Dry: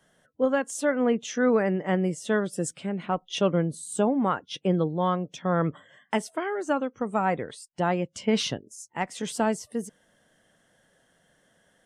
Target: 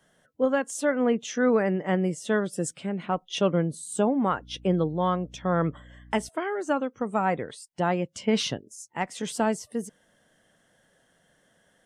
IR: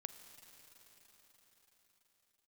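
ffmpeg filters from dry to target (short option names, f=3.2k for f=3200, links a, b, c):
-filter_complex "[0:a]asettb=1/sr,asplit=3[a][b][c];[a]atrim=end=4.304[d];[b]atrim=start=4.3:end=6.29,asetpts=PTS-STARTPTS,afade=t=in:d=0.004:c=qsin,afade=t=out:st=1.986:d=0.004:c=qsin,aeval=exprs='val(0)+0.00398*(sin(2*PI*60*n/s)+sin(2*PI*2*60*n/s)/2+sin(2*PI*3*60*n/s)/3+sin(2*PI*4*60*n/s)/4+sin(2*PI*5*60*n/s)/5)':c=same[e];[c]atrim=start=6.286[f];[d][e]acrossfade=d=0.004:c1=hsin:c2=qsin[g];[g][f]acrossfade=d=0.004:c1=qsin:c2=hsin"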